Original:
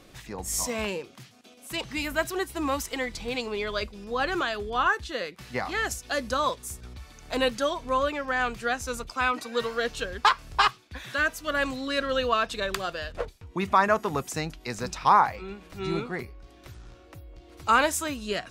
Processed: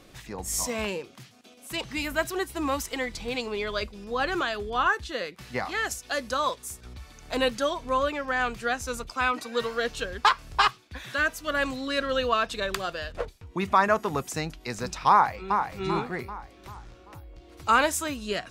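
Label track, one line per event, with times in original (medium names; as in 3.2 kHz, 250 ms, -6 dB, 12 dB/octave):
5.650000	6.860000	bass shelf 270 Hz -6.5 dB
15.110000	15.620000	echo throw 390 ms, feedback 45%, level -6 dB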